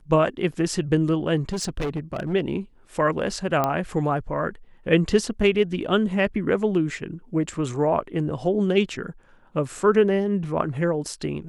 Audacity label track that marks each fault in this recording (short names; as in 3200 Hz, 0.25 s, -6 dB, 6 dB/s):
1.490000	2.340000	clipped -23 dBFS
3.640000	3.640000	pop -9 dBFS